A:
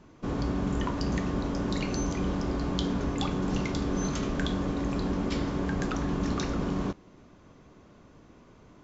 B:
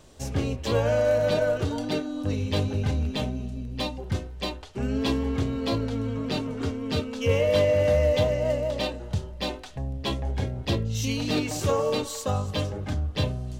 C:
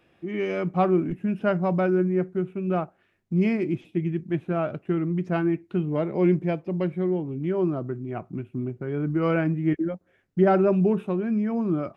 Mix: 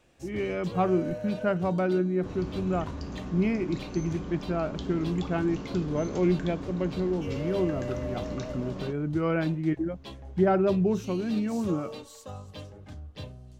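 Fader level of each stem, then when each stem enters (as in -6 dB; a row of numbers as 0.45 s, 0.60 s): -9.0 dB, -14.5 dB, -3.5 dB; 2.00 s, 0.00 s, 0.00 s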